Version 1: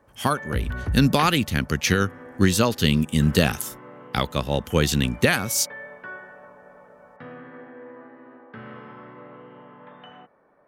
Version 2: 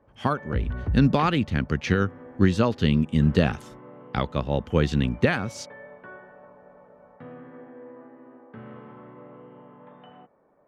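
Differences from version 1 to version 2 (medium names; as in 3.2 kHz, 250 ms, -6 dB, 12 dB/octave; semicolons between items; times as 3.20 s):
background: add peaking EQ 1.6 kHz -5 dB 0.89 oct; master: add tape spacing loss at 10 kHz 26 dB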